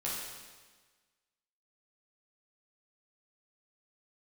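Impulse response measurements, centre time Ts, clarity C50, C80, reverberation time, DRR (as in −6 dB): 86 ms, −0.5 dB, 2.0 dB, 1.4 s, −6.5 dB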